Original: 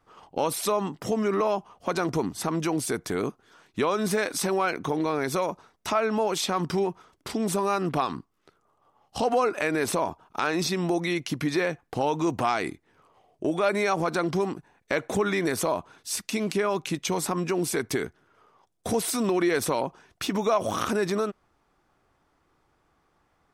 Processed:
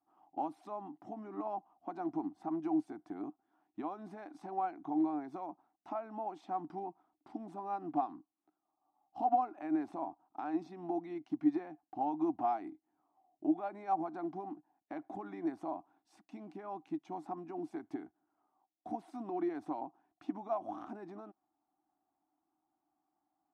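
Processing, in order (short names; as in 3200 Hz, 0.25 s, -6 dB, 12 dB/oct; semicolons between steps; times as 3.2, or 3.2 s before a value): modulation noise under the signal 32 dB; double band-pass 480 Hz, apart 1.3 oct; upward expander 1.5:1, over -40 dBFS; gain +1 dB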